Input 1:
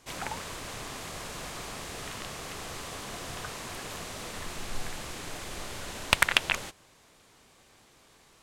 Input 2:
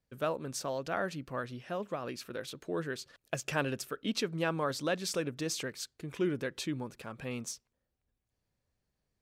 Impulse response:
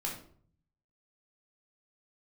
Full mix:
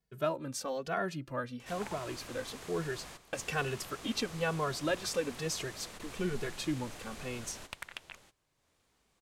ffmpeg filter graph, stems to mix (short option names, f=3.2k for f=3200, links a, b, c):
-filter_complex "[0:a]acompressor=mode=upward:threshold=-45dB:ratio=2.5,adelay=1600,volume=-8.5dB[a];[1:a]asplit=2[b][c];[c]adelay=2.3,afreqshift=-1.1[d];[b][d]amix=inputs=2:normalize=1,volume=2.5dB,asplit=2[e][f];[f]apad=whole_len=441886[g];[a][g]sidechaingate=range=-13dB:threshold=-56dB:ratio=16:detection=peak[h];[h][e]amix=inputs=2:normalize=0"